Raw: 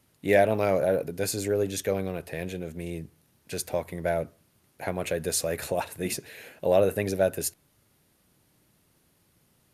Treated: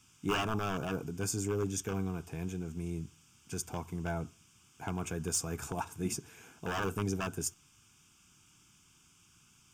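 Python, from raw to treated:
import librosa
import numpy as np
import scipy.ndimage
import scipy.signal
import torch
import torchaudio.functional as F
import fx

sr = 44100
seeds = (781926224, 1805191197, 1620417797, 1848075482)

y = fx.peak_eq(x, sr, hz=2800.0, db=-12.0, octaves=0.75)
y = 10.0 ** (-18.5 / 20.0) * (np.abs((y / 10.0 ** (-18.5 / 20.0) + 3.0) % 4.0 - 2.0) - 1.0)
y = fx.dmg_noise_band(y, sr, seeds[0], low_hz=1200.0, high_hz=12000.0, level_db=-62.0)
y = fx.fixed_phaser(y, sr, hz=2800.0, stages=8)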